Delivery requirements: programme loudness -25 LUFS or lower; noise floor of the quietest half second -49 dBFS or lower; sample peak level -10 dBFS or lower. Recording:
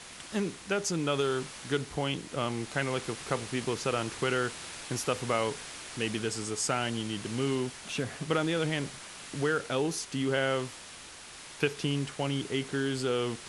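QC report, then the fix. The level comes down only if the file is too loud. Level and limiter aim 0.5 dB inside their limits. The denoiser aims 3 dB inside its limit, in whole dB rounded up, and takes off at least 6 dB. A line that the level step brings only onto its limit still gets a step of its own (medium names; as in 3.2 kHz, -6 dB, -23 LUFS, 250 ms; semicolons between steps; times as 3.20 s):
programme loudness -32.0 LUFS: pass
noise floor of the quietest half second -47 dBFS: fail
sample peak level -12.0 dBFS: pass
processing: noise reduction 6 dB, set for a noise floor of -47 dBFS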